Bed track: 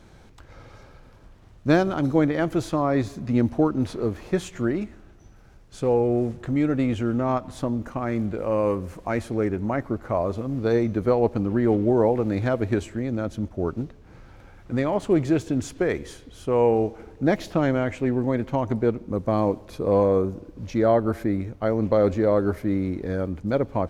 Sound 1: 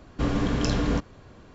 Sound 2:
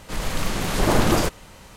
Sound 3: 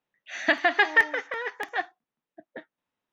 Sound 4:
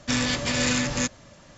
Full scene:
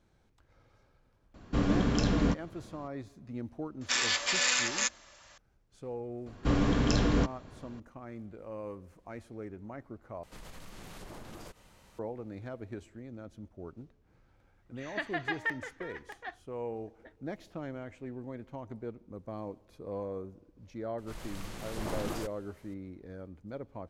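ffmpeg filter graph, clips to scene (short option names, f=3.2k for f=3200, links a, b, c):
-filter_complex "[1:a]asplit=2[a][b];[2:a]asplit=2[c][d];[0:a]volume=-18.5dB[e];[a]equalizer=f=200:w=2.7:g=5[f];[4:a]highpass=910[g];[c]acompressor=threshold=-29dB:ratio=6:attack=3.2:release=140:knee=1:detection=peak[h];[e]asplit=2[i][j];[i]atrim=end=10.234[k];[h]atrim=end=1.76,asetpts=PTS-STARTPTS,volume=-14.5dB[l];[j]atrim=start=11.986[m];[f]atrim=end=1.54,asetpts=PTS-STARTPTS,volume=-4dB,afade=t=in:d=0.004:c=hsin,afade=t=out:st=1.536:d=0.004:c=hsin,adelay=1340[n];[g]atrim=end=1.57,asetpts=PTS-STARTPTS,volume=-1.5dB,afade=t=in:d=0.004:c=hsin,afade=t=out:st=1.566:d=0.004:c=hsin,adelay=168021S[o];[b]atrim=end=1.54,asetpts=PTS-STARTPTS,volume=-2dB,afade=t=in:d=0.004:c=hsin,afade=t=out:st=1.536:d=0.004:c=hsin,adelay=276066S[p];[3:a]atrim=end=3.12,asetpts=PTS-STARTPTS,volume=-13.5dB,afade=t=in:d=0.004:c=hsin,afade=t=out:st=3.116:d=0.004:c=hsin,adelay=14490[q];[d]atrim=end=1.76,asetpts=PTS-STARTPTS,volume=-18dB,afade=t=in:d=0.004:c=hsin,afade=t=out:st=1.756:d=0.004:c=hsin,adelay=20980[r];[k][l]acrossfade=d=0.004:c1=hsin:c2=hsin[s];[s][m]acrossfade=d=0.004:c1=hsin:c2=hsin[t];[t][n][o][p][q][r]amix=inputs=6:normalize=0"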